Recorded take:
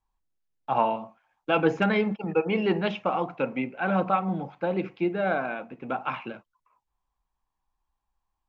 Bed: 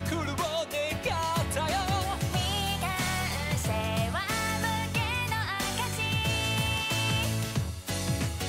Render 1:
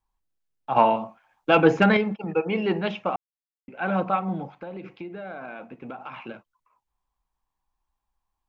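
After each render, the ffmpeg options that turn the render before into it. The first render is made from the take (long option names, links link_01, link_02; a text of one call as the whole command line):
ffmpeg -i in.wav -filter_complex "[0:a]asettb=1/sr,asplit=3[link_01][link_02][link_03];[link_01]atrim=end=0.764[link_04];[link_02]atrim=start=0.76:end=1.97,asetpts=PTS-STARTPTS,afade=type=in:duration=0.004:curve=qsin,afade=type=out:start_time=1.206:duration=0.004:curve=qsin,acontrast=51[link_05];[link_03]atrim=start=1.966[link_06];[link_04][link_05]acrossfade=duration=0.004:curve1=hsin:curve2=qsin[link_07];[link_07][link_06]acrossfade=duration=0.004:curve1=qsin:curve2=hsin,asettb=1/sr,asplit=3[link_08][link_09][link_10];[link_08]atrim=end=4.544[link_11];[link_09]atrim=start=4.54:end=6.29,asetpts=PTS-STARTPTS,afade=type=in:duration=0.004:curve=qsin,afade=type=out:start_time=1.746:duration=0.004:curve=qsin,acompressor=threshold=-33dB:ratio=8:attack=3.2:release=140:knee=1:detection=peak[link_12];[link_10]atrim=start=6.286[link_13];[link_11][link_12]acrossfade=duration=0.004:curve1=hsin:curve2=qsin[link_14];[link_14][link_13]acrossfade=duration=0.004:curve1=qsin:curve2=hsin,asplit=3[link_15][link_16][link_17];[link_15]atrim=end=3.16,asetpts=PTS-STARTPTS,afade=type=out:start_time=3.156:duration=0.004:curve=hsin[link_18];[link_16]atrim=start=3.16:end=3.68,asetpts=PTS-STARTPTS,volume=0[link_19];[link_17]atrim=start=3.68,asetpts=PTS-STARTPTS,afade=type=in:duration=0.004:curve=hsin[link_20];[link_18][link_19][link_20]concat=n=3:v=0:a=1" out.wav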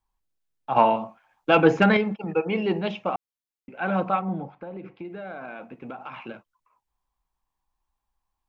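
ffmpeg -i in.wav -filter_complex "[0:a]asettb=1/sr,asplit=3[link_01][link_02][link_03];[link_01]atrim=end=2.634[link_04];[link_02]atrim=start=2.63:end=3.08,asetpts=PTS-STARTPTS,afade=type=in:duration=0.004:curve=qsin,afade=type=out:start_time=0.446:duration=0.004:curve=qsin,equalizer=frequency=1500:width=1.6:gain=-6[link_05];[link_03]atrim=start=3.076[link_06];[link_04][link_05]acrossfade=duration=0.004:curve1=hsin:curve2=qsin[link_07];[link_07][link_06]acrossfade=duration=0.004:curve1=qsin:curve2=hsin,asettb=1/sr,asplit=3[link_08][link_09][link_10];[link_08]atrim=end=4.214[link_11];[link_09]atrim=start=4.21:end=5.05,asetpts=PTS-STARTPTS,afade=type=in:duration=0.004:curve=qsin,afade=type=out:start_time=0.836:duration=0.004:curve=qsin,lowpass=frequency=1500:poles=1[link_12];[link_10]atrim=start=5.046[link_13];[link_11][link_12]acrossfade=duration=0.004:curve1=hsin:curve2=qsin[link_14];[link_14][link_13]acrossfade=duration=0.004:curve1=qsin:curve2=hsin" out.wav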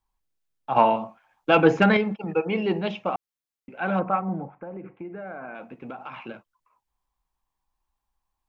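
ffmpeg -i in.wav -filter_complex "[0:a]asettb=1/sr,asplit=3[link_01][link_02][link_03];[link_01]atrim=end=3.994[link_04];[link_02]atrim=start=3.99:end=5.55,asetpts=PTS-STARTPTS,afade=type=in:duration=0.004:curve=qsin,afade=type=out:start_time=1.556:duration=0.004:curve=qsin,lowpass=frequency=2200:width=0.5412,lowpass=frequency=2200:width=1.3066[link_05];[link_03]atrim=start=5.546[link_06];[link_04][link_05]acrossfade=duration=0.004:curve1=hsin:curve2=qsin[link_07];[link_07][link_06]acrossfade=duration=0.004:curve1=qsin:curve2=hsin" out.wav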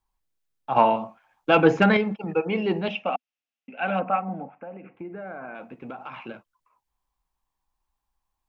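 ffmpeg -i in.wav -filter_complex "[0:a]asettb=1/sr,asplit=3[link_01][link_02][link_03];[link_01]atrim=end=2.884[link_04];[link_02]atrim=start=2.88:end=4.95,asetpts=PTS-STARTPTS,afade=type=in:duration=0.004:curve=qsin,afade=type=out:start_time=2.066:duration=0.004:curve=qsin,highpass=230,equalizer=frequency=250:width_type=q:width=4:gain=7,equalizer=frequency=360:width_type=q:width=4:gain=-10,equalizer=frequency=710:width_type=q:width=4:gain=4,equalizer=frequency=1000:width_type=q:width=4:gain=-5,equalizer=frequency=2700:width_type=q:width=4:gain=10,equalizer=frequency=4300:width_type=q:width=4:gain=-6,lowpass=frequency=5900:width=0.5412,lowpass=frequency=5900:width=1.3066[link_05];[link_03]atrim=start=4.946[link_06];[link_04][link_05]acrossfade=duration=0.004:curve1=hsin:curve2=qsin[link_07];[link_07][link_06]acrossfade=duration=0.004:curve1=qsin:curve2=hsin" out.wav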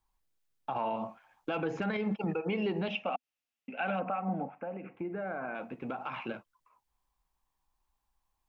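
ffmpeg -i in.wav -af "acompressor=threshold=-24dB:ratio=6,alimiter=limit=-23.5dB:level=0:latency=1:release=103" out.wav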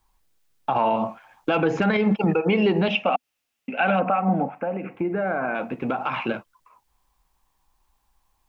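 ffmpeg -i in.wav -af "volume=12dB" out.wav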